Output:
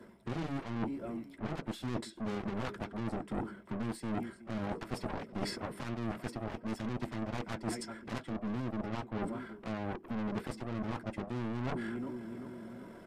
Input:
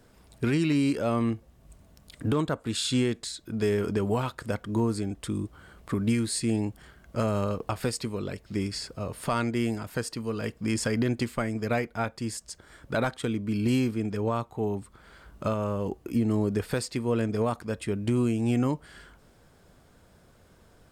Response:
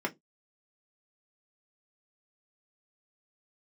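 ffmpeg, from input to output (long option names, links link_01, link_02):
-filter_complex "[0:a]aecho=1:1:616|1232|1848:0.0668|0.0314|0.0148[link_01];[1:a]atrim=start_sample=2205,atrim=end_sample=6615[link_02];[link_01][link_02]afir=irnorm=-1:irlink=0,acrossover=split=180[link_03][link_04];[link_04]asoftclip=type=tanh:threshold=-23.5dB[link_05];[link_03][link_05]amix=inputs=2:normalize=0,atempo=1.6,aeval=exprs='0.237*(cos(1*acos(clip(val(0)/0.237,-1,1)))-cos(1*PI/2))+0.075*(cos(2*acos(clip(val(0)/0.237,-1,1)))-cos(2*PI/2))+0.075*(cos(7*acos(clip(val(0)/0.237,-1,1)))-cos(7*PI/2))':channel_layout=same,areverse,acompressor=threshold=-33dB:ratio=10,areverse" -ar 32000 -c:a libmp3lame -b:a 80k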